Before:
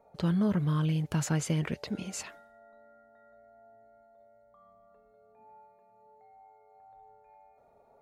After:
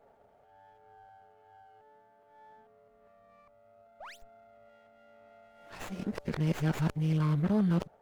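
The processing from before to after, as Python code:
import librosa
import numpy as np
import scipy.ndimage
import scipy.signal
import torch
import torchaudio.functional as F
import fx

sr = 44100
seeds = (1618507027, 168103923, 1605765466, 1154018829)

y = x[::-1].copy()
y = fx.spec_paint(y, sr, seeds[0], shape='rise', start_s=4.0, length_s=0.23, low_hz=540.0, high_hz=8000.0, level_db=-44.0)
y = fx.running_max(y, sr, window=9)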